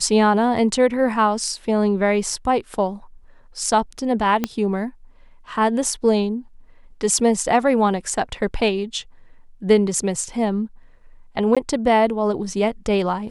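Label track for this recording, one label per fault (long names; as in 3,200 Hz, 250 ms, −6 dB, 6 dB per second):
4.440000	4.440000	click −7 dBFS
11.550000	11.570000	drop-out 16 ms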